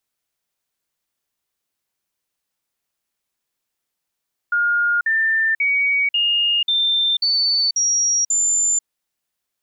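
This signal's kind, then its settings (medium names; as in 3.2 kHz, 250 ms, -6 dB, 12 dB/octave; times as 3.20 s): stepped sine 1.42 kHz up, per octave 3, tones 8, 0.49 s, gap 0.05 s -15 dBFS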